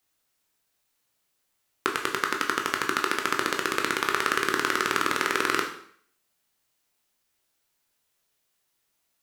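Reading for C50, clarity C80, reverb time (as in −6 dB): 7.5 dB, 10.5 dB, 0.60 s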